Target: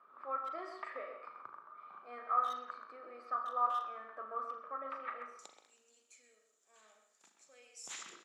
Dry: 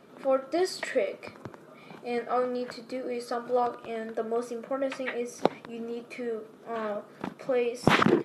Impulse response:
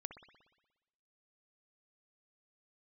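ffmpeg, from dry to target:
-filter_complex "[0:a]asetnsamples=nb_out_samples=441:pad=0,asendcmd='5.39 bandpass f 7100',bandpass=frequency=1200:width_type=q:width=11:csg=0,asplit=2[link_01][link_02];[link_02]adelay=130,highpass=300,lowpass=3400,asoftclip=type=hard:threshold=-37dB,volume=-7dB[link_03];[link_01][link_03]amix=inputs=2:normalize=0[link_04];[1:a]atrim=start_sample=2205,asetrate=70560,aresample=44100[link_05];[link_04][link_05]afir=irnorm=-1:irlink=0,volume=15dB"

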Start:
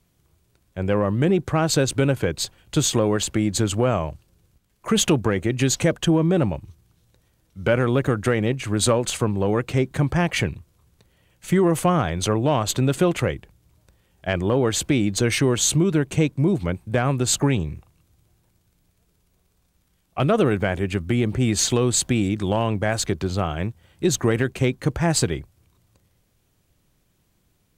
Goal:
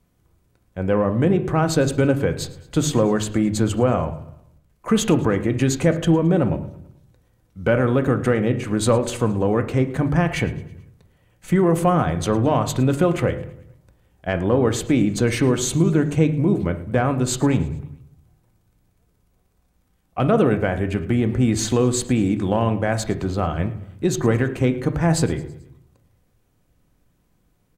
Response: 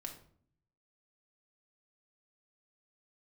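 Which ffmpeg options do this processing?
-filter_complex "[0:a]aecho=1:1:109|218|327|436:0.0891|0.0463|0.0241|0.0125,asplit=2[link_01][link_02];[1:a]atrim=start_sample=2205,lowpass=2200[link_03];[link_02][link_03]afir=irnorm=-1:irlink=0,volume=4dB[link_04];[link_01][link_04]amix=inputs=2:normalize=0,volume=-4dB"

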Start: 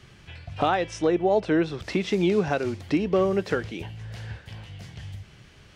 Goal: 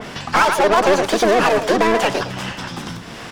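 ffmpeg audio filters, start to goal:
ffmpeg -i in.wav -filter_complex "[0:a]asplit=2[link_01][link_02];[link_02]adelay=194,lowpass=frequency=2300:poles=1,volume=-15dB,asplit=2[link_03][link_04];[link_04]adelay=194,lowpass=frequency=2300:poles=1,volume=0.26,asplit=2[link_05][link_06];[link_06]adelay=194,lowpass=frequency=2300:poles=1,volume=0.26[link_07];[link_01][link_03][link_05][link_07]amix=inputs=4:normalize=0,asetrate=76440,aresample=44100,asplit=2[link_08][link_09];[link_09]highpass=frequency=720:poles=1,volume=27dB,asoftclip=type=tanh:threshold=-10.5dB[link_10];[link_08][link_10]amix=inputs=2:normalize=0,lowpass=frequency=2100:poles=1,volume=-6dB,acompressor=mode=upward:threshold=-24dB:ratio=2.5,aeval=exprs='val(0)+0.00355*(sin(2*PI*50*n/s)+sin(2*PI*2*50*n/s)/2+sin(2*PI*3*50*n/s)/3+sin(2*PI*4*50*n/s)/4+sin(2*PI*5*50*n/s)/5)':channel_layout=same,equalizer=frequency=160:width_type=o:width=0.33:gain=-6,equalizer=frequency=1600:width_type=o:width=0.33:gain=7,equalizer=frequency=4000:width_type=o:width=0.33:gain=-7,asplit=2[link_11][link_12];[link_12]asetrate=29433,aresample=44100,atempo=1.49831,volume=-1dB[link_13];[link_11][link_13]amix=inputs=2:normalize=0,aeval=exprs='0.596*(cos(1*acos(clip(val(0)/0.596,-1,1)))-cos(1*PI/2))+0.0168*(cos(6*acos(clip(val(0)/0.596,-1,1)))-cos(6*PI/2))+0.0237*(cos(7*acos(clip(val(0)/0.596,-1,1)))-cos(7*PI/2))':channel_layout=same,adynamicequalizer=threshold=0.0251:dfrequency=2500:dqfactor=0.7:tfrequency=2500:tqfactor=0.7:attack=5:release=100:ratio=0.375:range=2.5:mode=boostabove:tftype=highshelf" out.wav

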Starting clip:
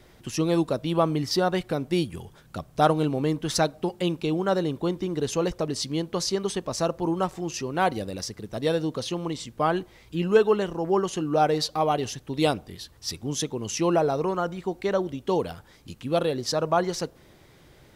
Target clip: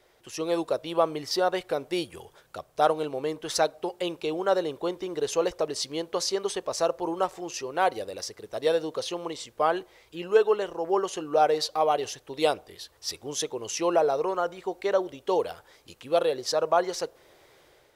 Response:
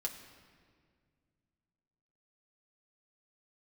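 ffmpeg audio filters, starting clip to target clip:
-af "lowshelf=frequency=320:width_type=q:width=1.5:gain=-11.5,dynaudnorm=framelen=170:gausssize=5:maxgain=6dB,volume=-6.5dB"

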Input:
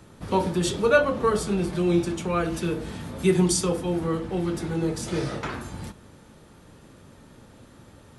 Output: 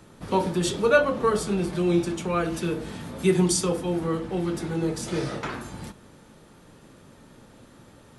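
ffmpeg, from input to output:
ffmpeg -i in.wav -af "equalizer=frequency=75:width=1.6:gain=-7.5" out.wav

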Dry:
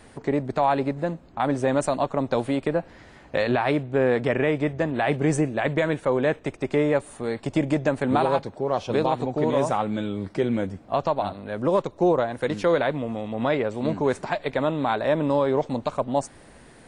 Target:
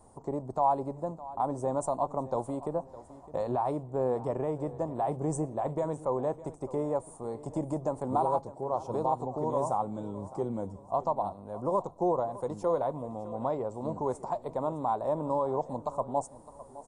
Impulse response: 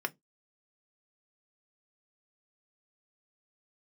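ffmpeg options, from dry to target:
-filter_complex "[0:a]firequalizer=gain_entry='entry(110,0);entry(280,-5);entry(950,4);entry(1600,-22);entry(2500,-24);entry(7200,1)':delay=0.05:min_phase=1,aecho=1:1:610|1220|1830:0.141|0.0494|0.0173,asplit=2[link_01][link_02];[1:a]atrim=start_sample=2205[link_03];[link_02][link_03]afir=irnorm=-1:irlink=0,volume=-15dB[link_04];[link_01][link_04]amix=inputs=2:normalize=0,aresample=32000,aresample=44100,volume=-7.5dB"

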